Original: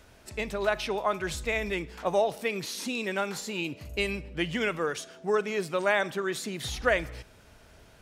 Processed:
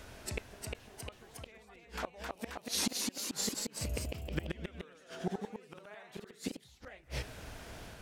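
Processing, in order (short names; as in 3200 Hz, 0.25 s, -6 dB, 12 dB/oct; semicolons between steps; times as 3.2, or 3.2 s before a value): flipped gate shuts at -26 dBFS, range -34 dB; echoes that change speed 0.374 s, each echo +1 st, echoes 3; gain +4.5 dB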